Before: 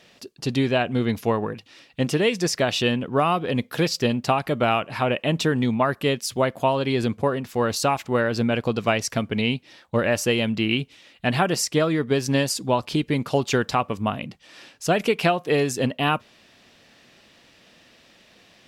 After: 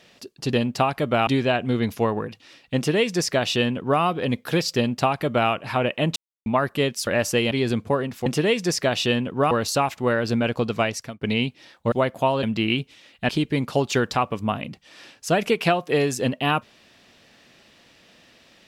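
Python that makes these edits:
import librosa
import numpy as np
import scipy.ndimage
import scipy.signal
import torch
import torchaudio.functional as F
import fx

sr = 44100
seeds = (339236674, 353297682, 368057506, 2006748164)

y = fx.edit(x, sr, fx.duplicate(start_s=2.02, length_s=1.25, to_s=7.59),
    fx.duplicate(start_s=4.02, length_s=0.74, to_s=0.53),
    fx.silence(start_s=5.42, length_s=0.3),
    fx.swap(start_s=6.33, length_s=0.51, other_s=10.0, other_length_s=0.44),
    fx.fade_out_span(start_s=8.71, length_s=0.58, curve='qsin'),
    fx.cut(start_s=11.3, length_s=1.57), tone=tone)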